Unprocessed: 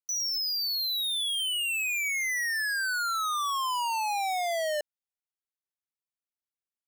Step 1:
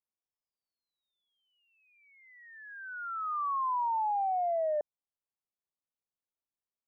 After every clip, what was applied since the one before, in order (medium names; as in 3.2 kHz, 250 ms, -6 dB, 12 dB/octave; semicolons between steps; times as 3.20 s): steep low-pass 1.2 kHz 36 dB/octave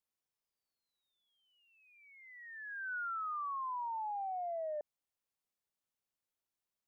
peak limiter -38 dBFS, peak gain reduction 11 dB; trim +2 dB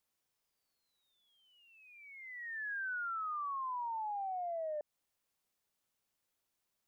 compression, threshold -45 dBFS, peak gain reduction 7 dB; trim +7 dB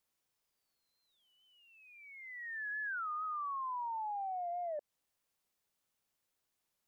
warped record 33 1/3 rpm, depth 160 cents